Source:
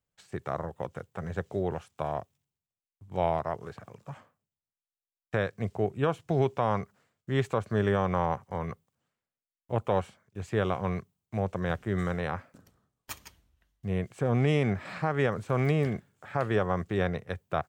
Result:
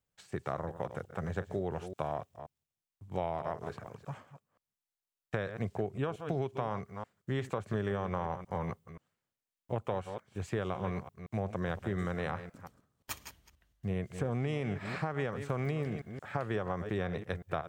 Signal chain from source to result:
delay that plays each chunk backwards 176 ms, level −13 dB
downward compressor, threshold −30 dBFS, peak gain reduction 10 dB

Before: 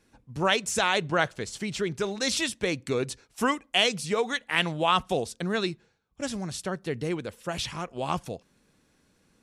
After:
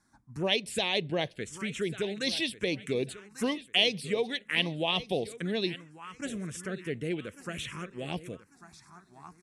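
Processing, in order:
repeating echo 1,144 ms, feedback 33%, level −16 dB
phaser swept by the level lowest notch 470 Hz, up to 1,400 Hz, full sweep at −23 dBFS
dynamic equaliser 1,000 Hz, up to −5 dB, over −45 dBFS, Q 1.5
low-pass filter 11,000 Hz 24 dB per octave
low-shelf EQ 100 Hz −11 dB

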